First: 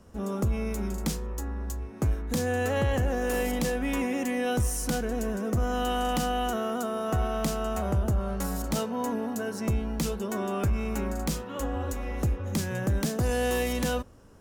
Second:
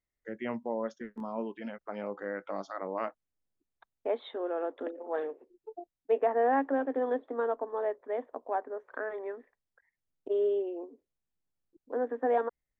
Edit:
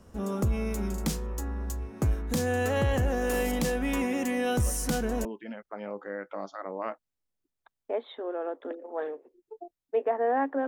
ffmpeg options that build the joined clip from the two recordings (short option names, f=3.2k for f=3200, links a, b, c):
-filter_complex "[1:a]asplit=2[a][b];[0:a]apad=whole_dur=10.67,atrim=end=10.67,atrim=end=5.252[c];[b]atrim=start=1.408:end=6.83[d];[a]atrim=start=0.82:end=1.41,asetpts=PTS-STARTPTS,volume=-6.5dB,afade=t=in:d=0.004:c=hsin,afade=t=out:st=0.586:d=0.004:c=hsin,adelay=4660[e];[c][d]acrossfade=d=0.004:c1=hsin:c2=hsin[f];[f][e]amix=inputs=2:normalize=0"